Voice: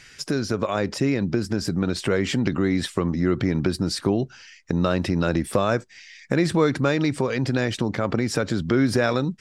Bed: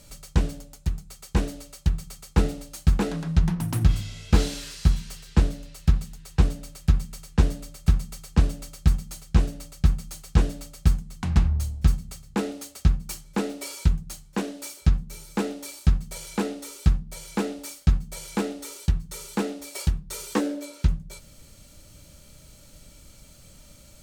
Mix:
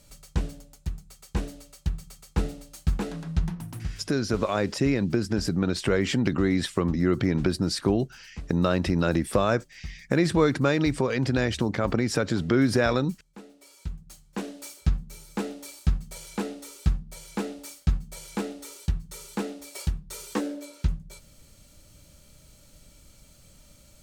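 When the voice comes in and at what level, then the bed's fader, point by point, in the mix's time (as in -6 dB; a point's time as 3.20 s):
3.80 s, -1.5 dB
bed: 3.43 s -5.5 dB
4.14 s -19.5 dB
13.57 s -19.5 dB
14.45 s -4 dB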